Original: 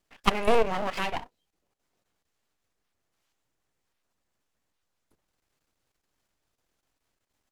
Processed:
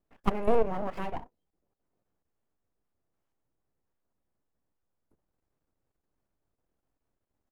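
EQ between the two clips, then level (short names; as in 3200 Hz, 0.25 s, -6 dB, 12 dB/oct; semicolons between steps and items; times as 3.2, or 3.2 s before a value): bell 3600 Hz -14.5 dB 3 oct; high shelf 5300 Hz -10 dB; 0.0 dB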